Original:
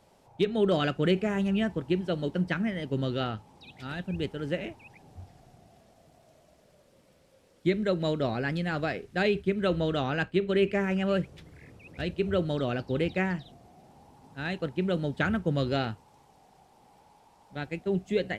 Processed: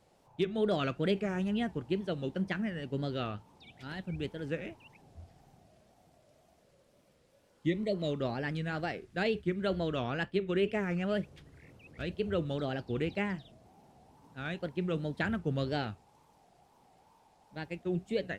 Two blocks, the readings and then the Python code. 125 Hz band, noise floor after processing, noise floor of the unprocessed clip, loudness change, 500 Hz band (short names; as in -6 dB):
-5.0 dB, -67 dBFS, -62 dBFS, -5.0 dB, -5.0 dB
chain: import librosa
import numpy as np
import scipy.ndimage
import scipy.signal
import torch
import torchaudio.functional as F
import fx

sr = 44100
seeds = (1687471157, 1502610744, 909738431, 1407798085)

y = fx.wow_flutter(x, sr, seeds[0], rate_hz=2.1, depth_cents=140.0)
y = fx.spec_repair(y, sr, seeds[1], start_s=7.41, length_s=0.7, low_hz=760.0, high_hz=1800.0, source='both')
y = y * 10.0 ** (-5.0 / 20.0)